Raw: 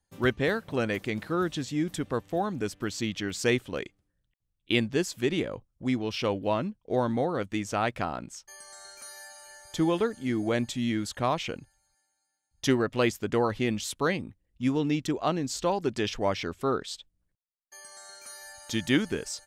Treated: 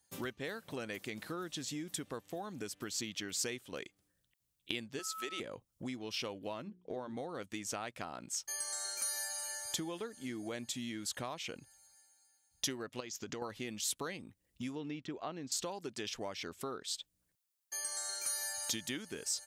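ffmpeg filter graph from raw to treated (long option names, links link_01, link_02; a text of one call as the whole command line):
ffmpeg -i in.wav -filter_complex "[0:a]asettb=1/sr,asplit=3[link_01][link_02][link_03];[link_01]atrim=end=4.994[link_04];[link_02]atrim=start=4.99:end=5.4,asetpts=PTS-STARTPTS,afade=type=in:duration=0.004:curve=qsin,afade=type=out:start_time=0.406:duration=0.004:curve=qsin,highpass=460,aeval=exprs='val(0)+0.0178*sin(2*PI*1300*n/s)':channel_layout=same[link_05];[link_03]atrim=start=5.396[link_06];[link_04][link_05]acrossfade=duration=0.004:curve1=hsin:curve2=qsin[link_07];[link_07][link_06]acrossfade=duration=0.004:curve1=qsin:curve2=hsin,asettb=1/sr,asplit=3[link_08][link_09][link_10];[link_08]atrim=end=6.624[link_11];[link_09]atrim=start=6.62:end=7.17,asetpts=PTS-STARTPTS,afade=type=in:duration=0.004:curve=qsin,afade=type=out:start_time=0.546:duration=0.004:curve=qsin,lowpass=frequency=2200:poles=1,bandreject=frequency=60:width_type=h:width=6,bandreject=frequency=120:width_type=h:width=6,bandreject=frequency=180:width_type=h:width=6,bandreject=frequency=240:width_type=h:width=6,bandreject=frequency=300:width_type=h:width=6,bandreject=frequency=360:width_type=h:width=6,bandreject=frequency=420:width_type=h:width=6[link_12];[link_10]atrim=start=7.166[link_13];[link_11][link_12]acrossfade=duration=0.004:curve1=hsin:curve2=qsin[link_14];[link_14][link_13]acrossfade=duration=0.004:curve1=qsin:curve2=hsin,asettb=1/sr,asplit=3[link_15][link_16][link_17];[link_15]atrim=end=13.004[link_18];[link_16]atrim=start=13:end=13.42,asetpts=PTS-STARTPTS,afade=type=in:duration=0.004:curve=qsin,afade=type=out:start_time=0.416:duration=0.004:curve=qsin,highshelf=frequency=7700:width_type=q:width=3:gain=-8,acompressor=threshold=-30dB:ratio=5:attack=3.2:release=140:knee=1:detection=peak[link_19];[link_17]atrim=start=13.416[link_20];[link_18][link_19]acrossfade=duration=0.004:curve1=hsin:curve2=qsin[link_21];[link_21][link_20]acrossfade=duration=0.004:curve1=qsin:curve2=hsin,asettb=1/sr,asplit=3[link_22][link_23][link_24];[link_22]atrim=end=14.754[link_25];[link_23]atrim=start=14.75:end=15.52,asetpts=PTS-STARTPTS,afade=type=in:duration=0.004:curve=qsin,afade=type=out:start_time=0.766:duration=0.004:curve=qsin,acrossover=split=3000[link_26][link_27];[link_27]acompressor=threshold=-45dB:ratio=4:attack=1:release=60[link_28];[link_26][link_28]amix=inputs=2:normalize=0,lowpass=4000[link_29];[link_24]atrim=start=15.516[link_30];[link_25][link_29]acrossfade=duration=0.004:curve1=hsin:curve2=qsin[link_31];[link_31][link_30]acrossfade=duration=0.004:curve1=qsin:curve2=hsin,highpass=frequency=170:poles=1,acompressor=threshold=-42dB:ratio=5,highshelf=frequency=4000:gain=11.5,volume=1dB" out.wav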